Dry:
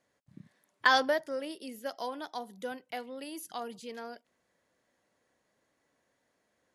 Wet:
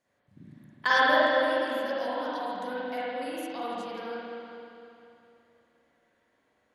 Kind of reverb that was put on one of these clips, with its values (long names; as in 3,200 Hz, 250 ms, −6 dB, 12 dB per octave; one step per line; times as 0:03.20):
spring reverb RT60 2.9 s, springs 40/51 ms, chirp 35 ms, DRR −9.5 dB
level −4 dB